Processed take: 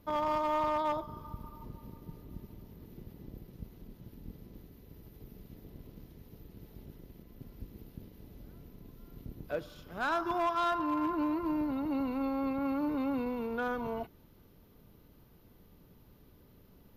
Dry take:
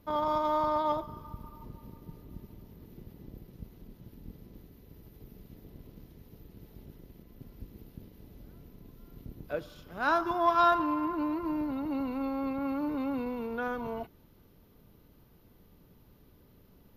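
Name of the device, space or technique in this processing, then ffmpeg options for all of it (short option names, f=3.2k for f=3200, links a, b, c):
limiter into clipper: -af "alimiter=limit=-21dB:level=0:latency=1:release=337,asoftclip=type=hard:threshold=-25dB"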